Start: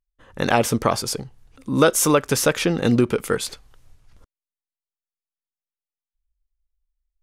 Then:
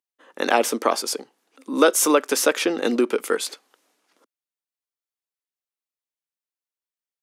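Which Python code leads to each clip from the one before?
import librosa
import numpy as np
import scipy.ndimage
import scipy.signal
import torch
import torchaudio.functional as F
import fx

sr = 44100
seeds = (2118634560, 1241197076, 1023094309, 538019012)

y = scipy.signal.sosfilt(scipy.signal.butter(6, 260.0, 'highpass', fs=sr, output='sos'), x)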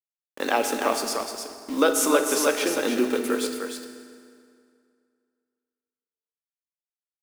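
y = fx.quant_dither(x, sr, seeds[0], bits=6, dither='none')
y = y + 10.0 ** (-6.0 / 20.0) * np.pad(y, (int(303 * sr / 1000.0), 0))[:len(y)]
y = fx.rev_fdn(y, sr, rt60_s=2.3, lf_ratio=1.0, hf_ratio=0.75, size_ms=22.0, drr_db=6.0)
y = y * 10.0 ** (-4.5 / 20.0)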